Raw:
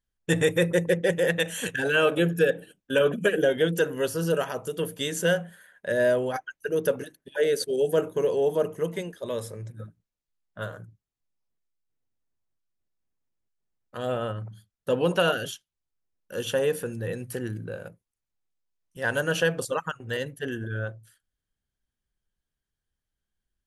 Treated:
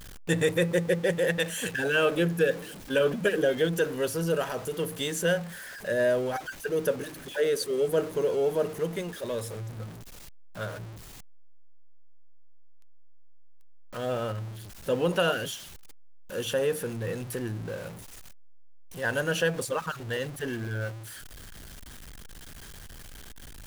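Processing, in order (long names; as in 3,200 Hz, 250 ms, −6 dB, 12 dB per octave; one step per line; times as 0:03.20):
converter with a step at zero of −34.5 dBFS
level −3 dB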